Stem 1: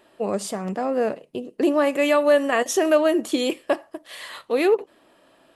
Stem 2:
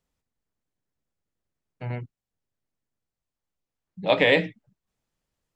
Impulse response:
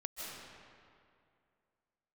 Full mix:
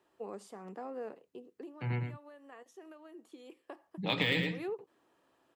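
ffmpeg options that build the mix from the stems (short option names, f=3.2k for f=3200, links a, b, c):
-filter_complex "[0:a]aemphasis=mode=production:type=75fm,acompressor=threshold=-22dB:ratio=6,bandpass=f=600:t=q:w=1.2:csg=0,volume=3dB,afade=t=out:st=1.15:d=0.62:silence=0.334965,afade=t=in:st=3.42:d=0.73:silence=0.281838[a];[1:a]deesser=0.65,highpass=96,volume=-1dB,asplit=3[b][c][d];[c]volume=-6.5dB[e];[d]apad=whole_len=245142[f];[a][f]sidechaincompress=threshold=-43dB:ratio=8:attack=16:release=132[g];[e]aecho=0:1:109:1[h];[g][b][h]amix=inputs=3:normalize=0,equalizer=f=610:w=3:g=-14,acrossover=split=180|3000[i][j][k];[j]acompressor=threshold=-32dB:ratio=6[l];[i][l][k]amix=inputs=3:normalize=0"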